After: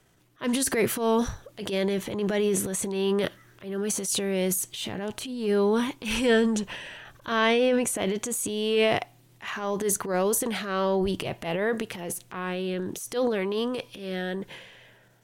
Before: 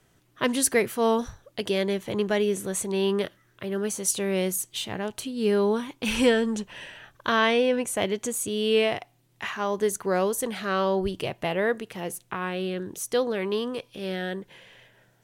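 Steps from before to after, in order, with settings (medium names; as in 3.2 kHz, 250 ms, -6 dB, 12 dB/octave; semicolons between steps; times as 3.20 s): transient shaper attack -10 dB, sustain +8 dB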